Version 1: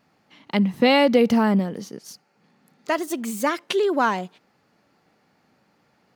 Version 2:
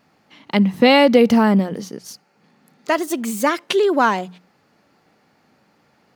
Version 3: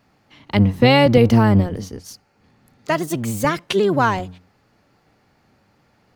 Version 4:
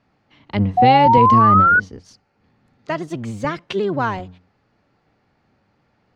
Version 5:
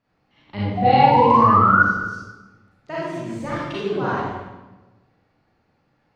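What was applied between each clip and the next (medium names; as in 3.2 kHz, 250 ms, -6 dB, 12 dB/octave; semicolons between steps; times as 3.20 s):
hum notches 60/120/180 Hz; trim +4.5 dB
octave divider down 1 oct, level 0 dB; trim -1.5 dB
distance through air 110 m; painted sound rise, 0.77–1.80 s, 720–1500 Hz -9 dBFS; trim -3.5 dB
reverberation RT60 1.1 s, pre-delay 33 ms, DRR -9 dB; trim -11.5 dB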